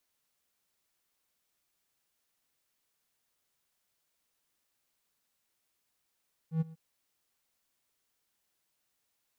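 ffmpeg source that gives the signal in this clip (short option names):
-f lavfi -i "aevalsrc='0.0794*(1-4*abs(mod(161*t+0.25,1)-0.5))':d=0.247:s=44100,afade=t=in:d=0.099,afade=t=out:st=0.099:d=0.021:silence=0.0891,afade=t=out:st=0.22:d=0.027"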